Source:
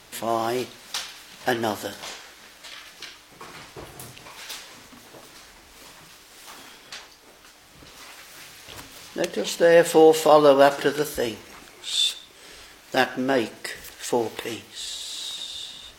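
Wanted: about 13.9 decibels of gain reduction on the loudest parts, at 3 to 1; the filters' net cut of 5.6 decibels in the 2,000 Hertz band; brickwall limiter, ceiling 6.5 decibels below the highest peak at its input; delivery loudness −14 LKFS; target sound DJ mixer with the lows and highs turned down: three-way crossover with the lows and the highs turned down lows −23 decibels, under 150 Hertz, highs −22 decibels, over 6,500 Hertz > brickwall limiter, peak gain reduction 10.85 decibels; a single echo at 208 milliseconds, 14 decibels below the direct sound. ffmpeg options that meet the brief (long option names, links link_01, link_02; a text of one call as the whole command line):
ffmpeg -i in.wav -filter_complex "[0:a]equalizer=frequency=2000:width_type=o:gain=-7.5,acompressor=threshold=-30dB:ratio=3,alimiter=limit=-21.5dB:level=0:latency=1,acrossover=split=150 6500:gain=0.0708 1 0.0794[link_01][link_02][link_03];[link_01][link_02][link_03]amix=inputs=3:normalize=0,aecho=1:1:208:0.2,volume=28dB,alimiter=limit=-3dB:level=0:latency=1" out.wav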